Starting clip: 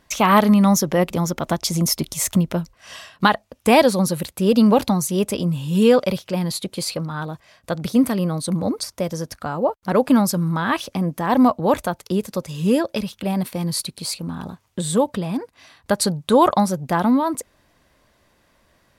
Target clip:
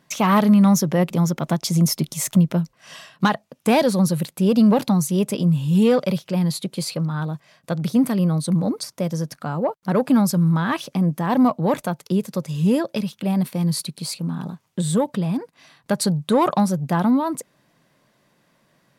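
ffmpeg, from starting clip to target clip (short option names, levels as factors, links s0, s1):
-af "asoftclip=type=tanh:threshold=0.422,lowshelf=f=100:t=q:w=3:g=-13,volume=0.75"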